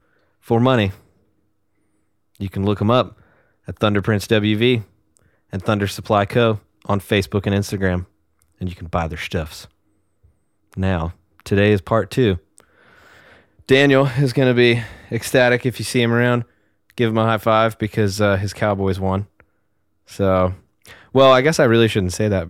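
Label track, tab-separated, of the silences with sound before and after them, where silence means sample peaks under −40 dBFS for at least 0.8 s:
0.980000	2.350000	silence
9.660000	10.730000	silence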